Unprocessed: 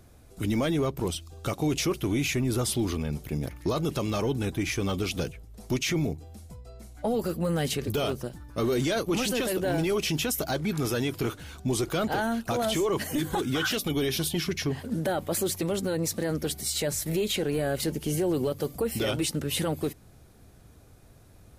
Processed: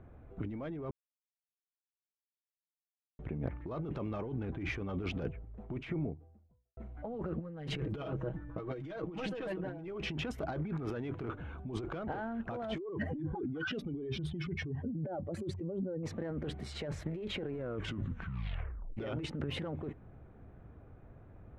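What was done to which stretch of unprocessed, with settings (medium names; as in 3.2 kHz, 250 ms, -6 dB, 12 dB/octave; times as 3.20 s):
0.91–3.19 s: mute
5.13–6.77 s: studio fade out
7.40–9.88 s: comb 6.3 ms, depth 85%
11.35–11.93 s: band-stop 1.9 kHz, Q 7.9
12.78–16.03 s: spectral contrast enhancement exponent 1.8
17.48 s: tape stop 1.49 s
whole clip: local Wiener filter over 9 samples; low-pass 1.9 kHz 12 dB/octave; compressor with a negative ratio -33 dBFS, ratio -1; trim -5 dB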